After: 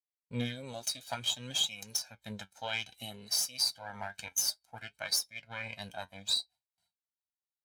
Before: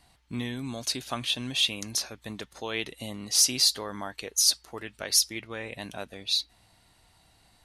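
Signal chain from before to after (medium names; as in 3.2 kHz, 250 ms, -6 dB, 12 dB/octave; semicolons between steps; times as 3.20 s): comb filter that takes the minimum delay 1.3 ms; gate with hold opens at -51 dBFS; high-pass 45 Hz; tilt EQ +2 dB/octave; compression 5:1, threshold -28 dBFS, peak gain reduction 14 dB; flange 0.58 Hz, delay 5.5 ms, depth 5.7 ms, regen +65%; spectral contrast expander 1.5:1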